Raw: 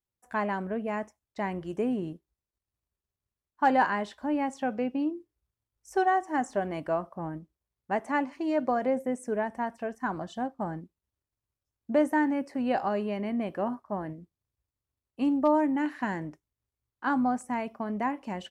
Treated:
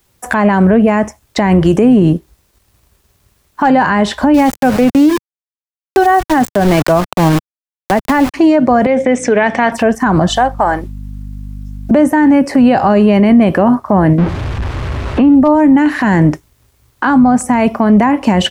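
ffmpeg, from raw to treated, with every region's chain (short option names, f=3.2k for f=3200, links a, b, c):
-filter_complex "[0:a]asettb=1/sr,asplit=3[a][b][c];[a]atrim=end=4.344[d];[b]atrim=start=4.34:end=8.34,asetpts=PTS-STARTPTS,afade=t=in:d=0.004:c=qsin,afade=t=out:st=3.996:d=0.004:c=qsin,highpass=f=59:p=1,aeval=exprs='val(0)*gte(abs(val(0)),0.0126)':c=same[e];[c]atrim=start=8.336[f];[d][e]acrossfade=d=0.004:c1=hsin:c2=qsin[g];[g][f]acrossfade=d=0.004:c1=qsin:c2=hsin,asettb=1/sr,asplit=3[h][i][j];[h]atrim=end=8.864[k];[i]atrim=start=8.86:end=9.72,asetpts=PTS-STARTPTS,afade=t=in:d=0.004:c=qsin,afade=t=out:st=0.856:d=0.004:c=qsin,acompressor=threshold=-30dB:ratio=6:attack=3.2:release=140:knee=1:detection=peak,aeval=exprs='val(0)+0.00282*(sin(2*PI*60*n/s)+sin(2*PI*2*60*n/s)/2+sin(2*PI*3*60*n/s)/3+sin(2*PI*4*60*n/s)/4+sin(2*PI*5*60*n/s)/5)':c=same,highpass=310,equalizer=f=360:t=q:w=4:g=-7,equalizer=f=630:t=q:w=4:g=-4,equalizer=f=960:t=q:w=4:g=-6,equalizer=f=2.3k:t=q:w=4:g=8,equalizer=f=3.5k:t=q:w=4:g=9,lowpass=f=6.1k:w=0.5412,lowpass=f=6.1k:w=1.3066[l];[j]atrim=start=9.716[m];[k][l]acrossfade=d=0.004:c1=hsin:c2=qsin[n];[n][m]acrossfade=d=0.004:c1=qsin:c2=hsin,asettb=1/sr,asplit=3[o][p][q];[o]atrim=end=10.294[r];[p]atrim=start=10.29:end=11.91,asetpts=PTS-STARTPTS,afade=t=in:d=0.004:c=qsin,afade=t=out:st=1.616:d=0.004:c=qsin,highpass=660,aeval=exprs='val(0)+0.00112*(sin(2*PI*50*n/s)+sin(2*PI*2*50*n/s)/2+sin(2*PI*3*50*n/s)/3+sin(2*PI*4*50*n/s)/4+sin(2*PI*5*50*n/s)/5)':c=same[s];[q]atrim=start=11.906[t];[r][s]acrossfade=d=0.004:c1=hsin:c2=qsin[u];[u][t]acrossfade=d=0.004:c1=qsin:c2=hsin,asettb=1/sr,asplit=3[v][w][x];[v]atrim=end=14.184[y];[w]atrim=start=14.18:end=15.35,asetpts=PTS-STARTPTS,afade=t=in:d=0.004:c=qsin,afade=t=out:st=1.166:d=0.004:c=qsin,aeval=exprs='val(0)+0.5*0.00668*sgn(val(0))':c=same,lowpass=2.1k[z];[x]atrim=start=15.346[aa];[y][z]acrossfade=d=0.004:c1=hsin:c2=qsin[ab];[ab][aa]acrossfade=d=0.004:c1=qsin:c2=hsin,acrossover=split=150[ac][ad];[ad]acompressor=threshold=-41dB:ratio=4[ae];[ac][ae]amix=inputs=2:normalize=0,alimiter=level_in=35.5dB:limit=-1dB:release=50:level=0:latency=1,volume=-1dB"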